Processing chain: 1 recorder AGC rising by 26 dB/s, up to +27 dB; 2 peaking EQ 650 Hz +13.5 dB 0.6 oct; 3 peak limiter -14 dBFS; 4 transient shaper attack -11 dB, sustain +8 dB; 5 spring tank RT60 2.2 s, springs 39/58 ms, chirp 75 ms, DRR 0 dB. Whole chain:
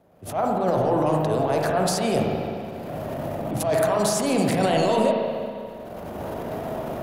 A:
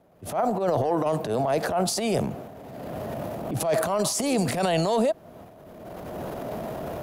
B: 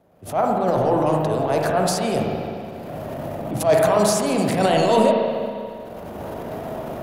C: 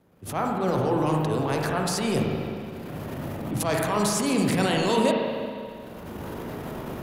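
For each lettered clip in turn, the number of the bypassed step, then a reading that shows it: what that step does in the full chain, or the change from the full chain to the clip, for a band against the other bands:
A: 5, momentary loudness spread change +1 LU; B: 3, momentary loudness spread change +4 LU; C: 2, 500 Hz band -4.5 dB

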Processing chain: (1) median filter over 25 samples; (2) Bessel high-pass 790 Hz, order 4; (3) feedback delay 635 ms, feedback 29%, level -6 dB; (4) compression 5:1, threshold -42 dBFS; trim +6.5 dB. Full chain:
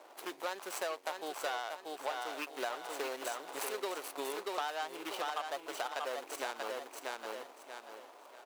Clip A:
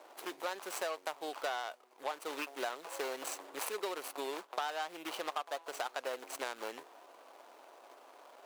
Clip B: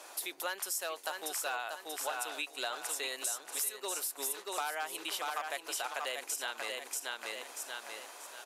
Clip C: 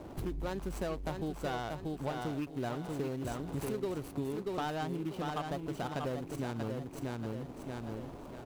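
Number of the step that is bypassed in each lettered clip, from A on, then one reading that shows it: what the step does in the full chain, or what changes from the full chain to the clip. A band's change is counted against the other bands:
3, momentary loudness spread change +10 LU; 1, 8 kHz band +11.5 dB; 2, 250 Hz band +18.0 dB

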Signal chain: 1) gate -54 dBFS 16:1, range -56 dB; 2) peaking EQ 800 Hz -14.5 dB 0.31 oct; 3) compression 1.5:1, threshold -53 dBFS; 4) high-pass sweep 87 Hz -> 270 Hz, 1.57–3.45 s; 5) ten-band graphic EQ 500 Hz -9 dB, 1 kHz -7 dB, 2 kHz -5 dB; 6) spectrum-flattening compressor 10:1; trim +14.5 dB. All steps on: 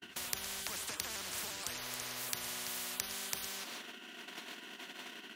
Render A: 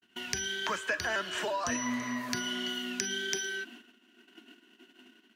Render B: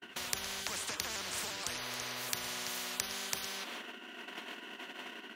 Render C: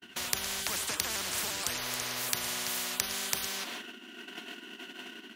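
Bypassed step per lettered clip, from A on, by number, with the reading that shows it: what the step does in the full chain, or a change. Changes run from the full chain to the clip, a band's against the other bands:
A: 6, 8 kHz band -8.0 dB; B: 5, 8 kHz band -2.0 dB; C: 3, mean gain reduction 6.5 dB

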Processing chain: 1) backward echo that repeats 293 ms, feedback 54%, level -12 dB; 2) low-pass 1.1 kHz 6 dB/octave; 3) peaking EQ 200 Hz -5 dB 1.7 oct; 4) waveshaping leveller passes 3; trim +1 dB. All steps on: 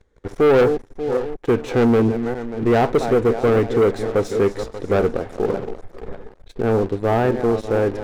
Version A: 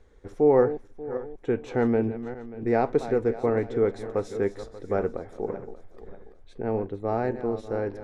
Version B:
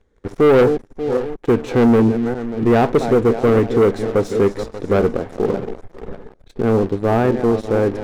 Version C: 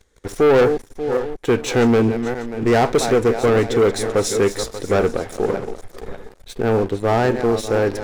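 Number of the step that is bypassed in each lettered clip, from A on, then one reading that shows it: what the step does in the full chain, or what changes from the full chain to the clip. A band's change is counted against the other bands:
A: 4, crest factor change +8.0 dB; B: 3, 250 Hz band +2.5 dB; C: 2, 4 kHz band +7.0 dB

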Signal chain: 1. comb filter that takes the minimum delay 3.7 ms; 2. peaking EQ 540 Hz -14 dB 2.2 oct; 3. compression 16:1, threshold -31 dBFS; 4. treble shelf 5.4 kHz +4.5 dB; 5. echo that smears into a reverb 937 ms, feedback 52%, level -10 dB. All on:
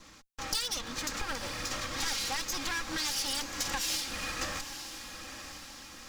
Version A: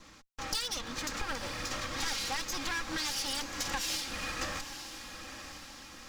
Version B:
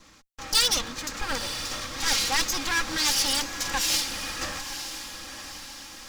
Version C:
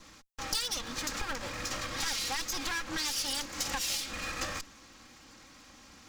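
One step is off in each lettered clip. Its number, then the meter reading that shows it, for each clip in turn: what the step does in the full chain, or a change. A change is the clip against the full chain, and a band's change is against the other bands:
4, 8 kHz band -2.5 dB; 3, mean gain reduction 3.5 dB; 5, echo-to-direct -8.5 dB to none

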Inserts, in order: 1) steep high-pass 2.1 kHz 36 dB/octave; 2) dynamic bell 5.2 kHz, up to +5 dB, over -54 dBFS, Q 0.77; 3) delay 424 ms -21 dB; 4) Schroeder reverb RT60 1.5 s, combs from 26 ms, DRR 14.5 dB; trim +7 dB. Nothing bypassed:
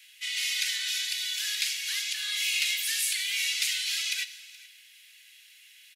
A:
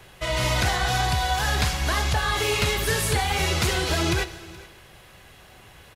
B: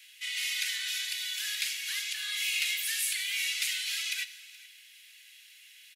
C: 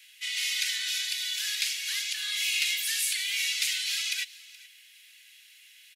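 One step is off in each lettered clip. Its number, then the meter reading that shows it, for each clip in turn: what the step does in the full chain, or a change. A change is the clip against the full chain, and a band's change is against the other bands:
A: 1, crest factor change -5.5 dB; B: 2, loudness change -3.0 LU; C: 4, echo-to-direct -13.5 dB to -21.0 dB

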